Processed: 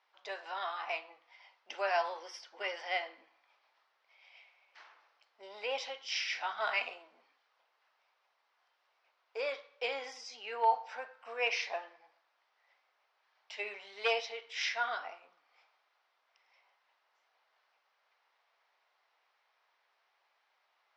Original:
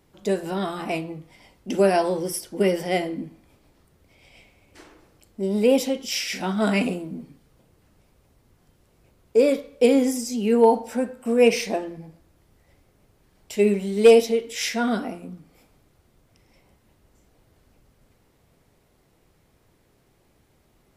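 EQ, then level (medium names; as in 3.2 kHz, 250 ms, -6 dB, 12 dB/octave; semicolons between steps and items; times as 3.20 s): high-pass 830 Hz 24 dB/octave; resonant low-pass 5.8 kHz, resonance Q 2.5; distance through air 330 m; -2.0 dB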